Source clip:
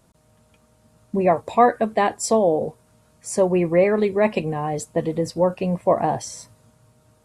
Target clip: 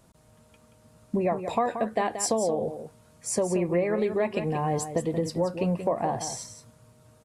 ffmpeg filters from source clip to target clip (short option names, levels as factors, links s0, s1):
-af "acompressor=threshold=0.0708:ratio=6,aecho=1:1:179:0.335"